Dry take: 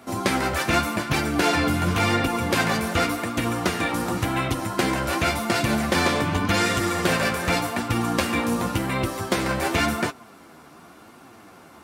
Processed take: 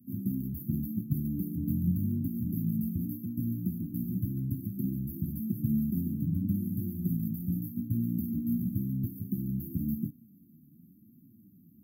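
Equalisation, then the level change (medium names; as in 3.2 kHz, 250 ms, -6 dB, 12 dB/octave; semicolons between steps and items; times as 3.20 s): high-pass 150 Hz 12 dB/octave; inverse Chebyshev band-stop 660–5800 Hz, stop band 60 dB; inverse Chebyshev band-stop 790–6200 Hz, stop band 50 dB; +2.0 dB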